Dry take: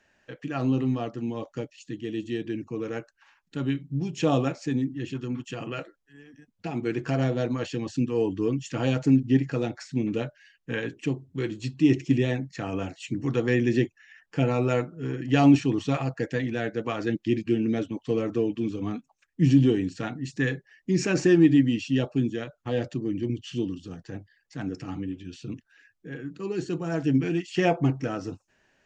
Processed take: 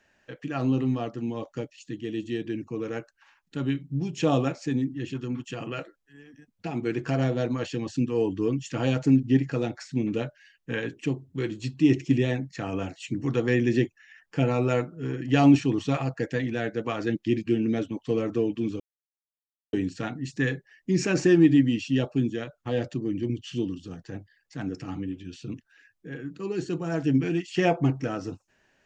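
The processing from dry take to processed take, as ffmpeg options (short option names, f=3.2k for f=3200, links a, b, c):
-filter_complex "[0:a]asplit=3[a][b][c];[a]atrim=end=18.8,asetpts=PTS-STARTPTS,afade=t=out:st=18.796:d=0.004:c=hsin[d];[b]atrim=start=18.8:end=19.73,asetpts=PTS-STARTPTS,volume=0[e];[c]atrim=start=19.73,asetpts=PTS-STARTPTS,afade=t=in:d=0.004:c=hsin[f];[d][e][f]concat=n=3:v=0:a=1"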